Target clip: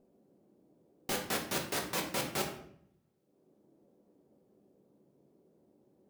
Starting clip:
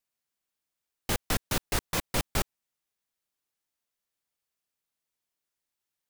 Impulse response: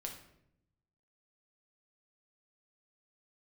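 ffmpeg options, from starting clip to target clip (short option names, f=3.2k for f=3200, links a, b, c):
-filter_complex "[0:a]highpass=240,acrossover=split=450|2200[a][b][c];[a]acompressor=mode=upward:threshold=-32dB:ratio=2.5[d];[d][b][c]amix=inputs=3:normalize=0[e];[1:a]atrim=start_sample=2205,asetrate=48510,aresample=44100[f];[e][f]afir=irnorm=-1:irlink=0"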